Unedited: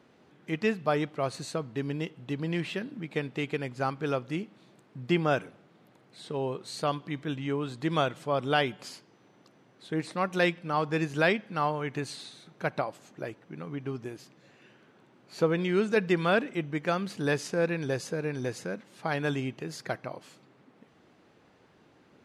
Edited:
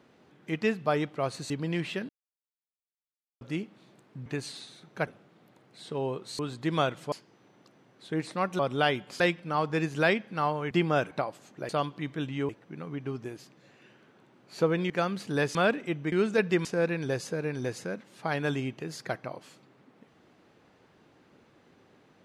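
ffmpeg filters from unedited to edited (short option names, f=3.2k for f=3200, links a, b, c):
-filter_complex "[0:a]asplit=18[a][b][c][d][e][f][g][h][i][j][k][l][m][n][o][p][q][r];[a]atrim=end=1.502[s];[b]atrim=start=2.298:end=2.89,asetpts=PTS-STARTPTS,afade=t=out:st=0.588:d=0.004:c=hsin[t];[c]atrim=start=2.89:end=4.21,asetpts=PTS-STARTPTS,volume=0[u];[d]atrim=start=4.21:end=5.062,asetpts=PTS-STARTPTS,afade=t=in:d=0.004:c=hsin[v];[e]atrim=start=11.898:end=12.712[w];[f]atrim=start=5.458:end=6.782[x];[g]atrim=start=7.578:end=8.312[y];[h]atrim=start=8.918:end=10.392[z];[i]atrim=start=8.308:end=8.922[aa];[j]atrim=start=10.388:end=11.902[ab];[k]atrim=start=5.058:end=5.462[ac];[l]atrim=start=12.708:end=13.292[ad];[m]atrim=start=6.778:end=7.582[ae];[n]atrim=start=13.288:end=15.702[af];[o]atrim=start=16.798:end=17.452[ag];[p]atrim=start=16.228:end=16.802[ah];[q]atrim=start=15.698:end=16.232[ai];[r]atrim=start=17.448[aj];[t][u][v]concat=n=3:v=0:a=1[ak];[s][ak]acrossfade=d=0.004:c1=hsin:c2=hsin[al];[al][w]acrossfade=d=0.004:c1=hsin:c2=hsin[am];[am][x]acrossfade=d=0.004:c1=hsin:c2=hsin[an];[an][y]acrossfade=d=0.004:c1=hsin:c2=hsin[ao];[ao][z]acrossfade=d=0.004:c1=hsin:c2=hsin[ap];[ap][aa]acrossfade=d=0.004:c1=hsin:c2=hsin[aq];[aq][ab]acrossfade=d=0.004:c1=hsin:c2=hsin[ar];[ar][ac]acrossfade=d=0.004:c1=hsin:c2=hsin[as];[as][ad]acrossfade=d=0.004:c1=hsin:c2=hsin[at];[at][ae]acrossfade=d=0.004:c1=hsin:c2=hsin[au];[au][af]acrossfade=d=0.004:c1=hsin:c2=hsin[av];[av][ag]acrossfade=d=0.004:c1=hsin:c2=hsin[aw];[aw][ah]acrossfade=d=0.004:c1=hsin:c2=hsin[ax];[ax][ai]acrossfade=d=0.004:c1=hsin:c2=hsin[ay];[ay][aj]acrossfade=d=0.004:c1=hsin:c2=hsin"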